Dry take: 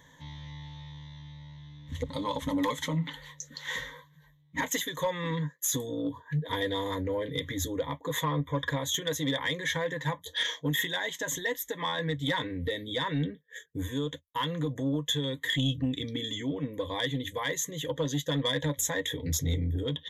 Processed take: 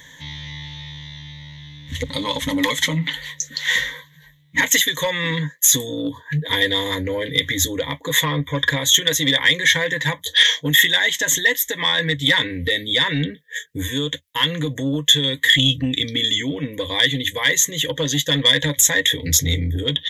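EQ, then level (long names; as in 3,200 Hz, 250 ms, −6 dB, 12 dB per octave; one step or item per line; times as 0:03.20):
high shelf with overshoot 1,500 Hz +8 dB, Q 1.5
+7.5 dB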